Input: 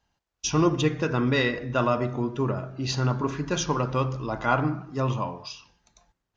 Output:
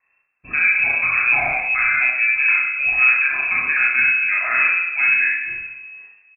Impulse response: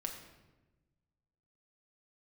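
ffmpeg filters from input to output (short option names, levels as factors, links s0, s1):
-filter_complex "[0:a]alimiter=limit=0.126:level=0:latency=1:release=27,aecho=1:1:40|68:0.668|0.531,asplit=2[s0][s1];[1:a]atrim=start_sample=2205,adelay=31[s2];[s1][s2]afir=irnorm=-1:irlink=0,volume=1[s3];[s0][s3]amix=inputs=2:normalize=0,lowpass=f=2300:t=q:w=0.5098,lowpass=f=2300:t=q:w=0.6013,lowpass=f=2300:t=q:w=0.9,lowpass=f=2300:t=q:w=2.563,afreqshift=-2700,volume=1.68"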